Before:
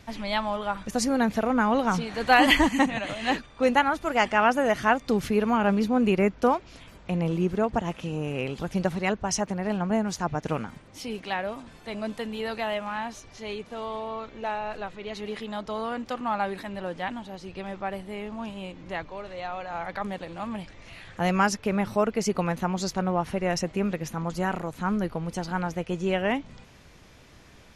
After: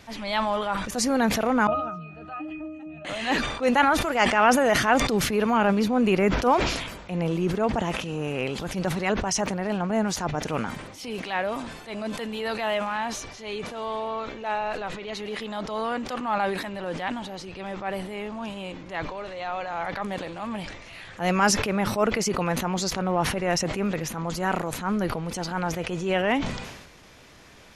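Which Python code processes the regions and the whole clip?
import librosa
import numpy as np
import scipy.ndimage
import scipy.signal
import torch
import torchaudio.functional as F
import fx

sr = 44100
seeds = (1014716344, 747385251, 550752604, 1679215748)

y = fx.chain(x, sr, fx.octave_resonator(note='D#', decay_s=0.5),
    fx.band_squash(depth_pct=100), at=(1.67, 3.05))
y = fx.low_shelf(y, sr, hz=220.0, db=-7.0)
y = fx.transient(y, sr, attack_db=-8, sustain_db=-1)
y = fx.sustainer(y, sr, db_per_s=51.0)
y = y * 10.0 ** (4.5 / 20.0)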